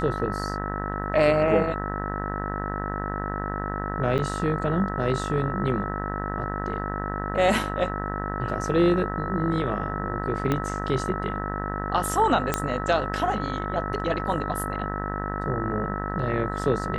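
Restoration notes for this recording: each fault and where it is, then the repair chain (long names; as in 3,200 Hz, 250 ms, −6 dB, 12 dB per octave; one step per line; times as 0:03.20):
mains buzz 50 Hz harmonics 39 −31 dBFS
whistle 1,300 Hz −33 dBFS
0:04.18–0:04.19: drop-out 7.8 ms
0:10.52: click −12 dBFS
0:12.54: click −7 dBFS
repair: click removal
notch filter 1,300 Hz, Q 30
hum removal 50 Hz, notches 39
repair the gap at 0:04.18, 7.8 ms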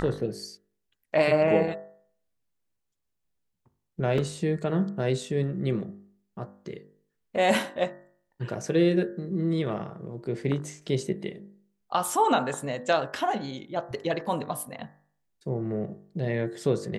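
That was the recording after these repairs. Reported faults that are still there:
0:10.52: click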